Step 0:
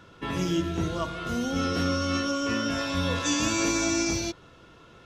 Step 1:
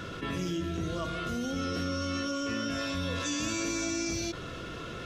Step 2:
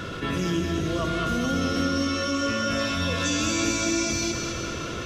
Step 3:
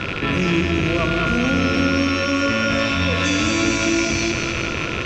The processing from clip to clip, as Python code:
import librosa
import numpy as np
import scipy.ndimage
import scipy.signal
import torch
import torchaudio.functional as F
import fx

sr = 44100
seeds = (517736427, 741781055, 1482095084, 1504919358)

y1 = fx.peak_eq(x, sr, hz=890.0, db=-11.0, octaves=0.3)
y1 = fx.env_flatten(y1, sr, amount_pct=70)
y1 = y1 * 10.0 ** (-8.0 / 20.0)
y2 = fx.echo_feedback(y1, sr, ms=211, feedback_pct=60, wet_db=-5)
y2 = y2 * 10.0 ** (6.0 / 20.0)
y3 = fx.rattle_buzz(y2, sr, strikes_db=-37.0, level_db=-18.0)
y3 = fx.air_absorb(y3, sr, metres=90.0)
y3 = y3 * 10.0 ** (6.5 / 20.0)